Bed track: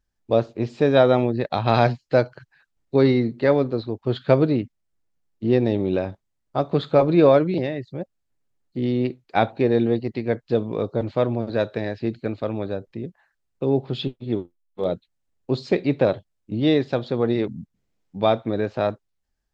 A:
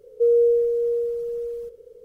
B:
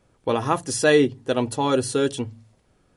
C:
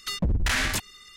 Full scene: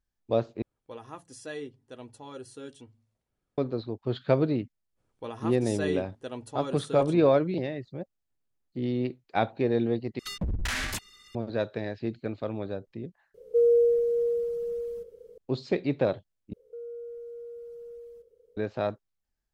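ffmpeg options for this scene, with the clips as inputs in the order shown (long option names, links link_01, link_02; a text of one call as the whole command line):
ffmpeg -i bed.wav -i cue0.wav -i cue1.wav -i cue2.wav -filter_complex "[2:a]asplit=2[link_01][link_02];[1:a]asplit=2[link_03][link_04];[0:a]volume=-6.5dB[link_05];[link_01]flanger=delay=0.4:depth=3.6:regen=80:speed=0.72:shape=triangular[link_06];[link_03]equalizer=frequency=190:width_type=o:width=0.31:gain=9.5[link_07];[link_04]acompressor=threshold=-27dB:ratio=3:attack=4.9:release=30:knee=1:detection=peak[link_08];[link_05]asplit=5[link_09][link_10][link_11][link_12][link_13];[link_09]atrim=end=0.624[link_14];[link_06]atrim=end=2.96,asetpts=PTS-STARTPTS,volume=-17dB[link_15];[link_10]atrim=start=3.576:end=10.194[link_16];[3:a]atrim=end=1.16,asetpts=PTS-STARTPTS,volume=-6dB[link_17];[link_11]atrim=start=11.346:end=13.344[link_18];[link_07]atrim=end=2.04,asetpts=PTS-STARTPTS,volume=-3.5dB[link_19];[link_12]atrim=start=15.376:end=16.534[link_20];[link_08]atrim=end=2.04,asetpts=PTS-STARTPTS,volume=-15dB[link_21];[link_13]atrim=start=18.566[link_22];[link_02]atrim=end=2.96,asetpts=PTS-STARTPTS,volume=-15.5dB,afade=type=in:duration=0.05,afade=type=out:start_time=2.91:duration=0.05,adelay=4950[link_23];[link_14][link_15]acrossfade=duration=0.004:curve1=hsin:curve2=hsin[link_24];[link_24][link_16]acrossfade=duration=0.004:curve1=hsin:curve2=hsin[link_25];[link_25][link_17]acrossfade=duration=0.004:curve1=hsin:curve2=hsin[link_26];[link_26][link_18]acrossfade=duration=0.004:curve1=hsin:curve2=hsin[link_27];[link_27][link_19]acrossfade=duration=0.004:curve1=hsin:curve2=hsin[link_28];[link_28][link_20]acrossfade=duration=0.004:curve1=hsin:curve2=hsin[link_29];[link_29][link_21]acrossfade=duration=0.004:curve1=hsin:curve2=hsin[link_30];[link_30][link_22]acrossfade=duration=0.004:curve1=hsin:curve2=hsin[link_31];[link_31][link_23]amix=inputs=2:normalize=0" out.wav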